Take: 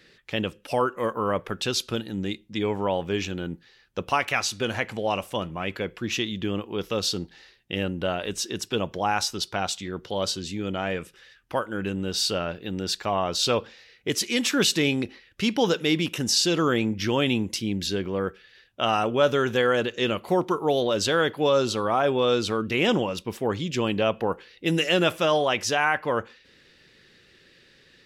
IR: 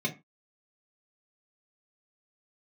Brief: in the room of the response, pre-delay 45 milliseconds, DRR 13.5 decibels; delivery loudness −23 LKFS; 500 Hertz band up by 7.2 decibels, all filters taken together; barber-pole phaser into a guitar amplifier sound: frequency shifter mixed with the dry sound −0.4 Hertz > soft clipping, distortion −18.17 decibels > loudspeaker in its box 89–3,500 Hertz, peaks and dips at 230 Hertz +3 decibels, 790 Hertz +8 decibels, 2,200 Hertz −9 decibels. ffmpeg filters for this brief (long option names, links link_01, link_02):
-filter_complex "[0:a]equalizer=frequency=500:width_type=o:gain=7.5,asplit=2[link_01][link_02];[1:a]atrim=start_sample=2205,adelay=45[link_03];[link_02][link_03]afir=irnorm=-1:irlink=0,volume=-20dB[link_04];[link_01][link_04]amix=inputs=2:normalize=0,asplit=2[link_05][link_06];[link_06]afreqshift=-0.4[link_07];[link_05][link_07]amix=inputs=2:normalize=1,asoftclip=threshold=-12dB,highpass=89,equalizer=frequency=230:width_type=q:width=4:gain=3,equalizer=frequency=790:width_type=q:width=4:gain=8,equalizer=frequency=2200:width_type=q:width=4:gain=-9,lowpass=frequency=3500:width=0.5412,lowpass=frequency=3500:width=1.3066,volume=2dB"